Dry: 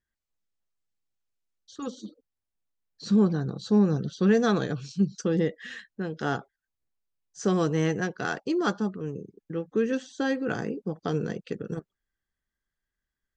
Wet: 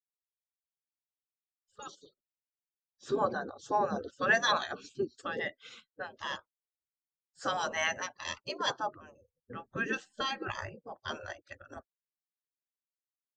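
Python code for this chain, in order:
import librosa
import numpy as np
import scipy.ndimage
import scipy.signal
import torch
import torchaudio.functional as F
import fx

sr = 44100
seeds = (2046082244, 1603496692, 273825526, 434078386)

y = fx.spec_gate(x, sr, threshold_db=-15, keep='weak')
y = fx.low_shelf(y, sr, hz=330.0, db=7.5, at=(9.39, 10.69))
y = fx.spectral_expand(y, sr, expansion=1.5)
y = F.gain(torch.from_numpy(y), 7.0).numpy()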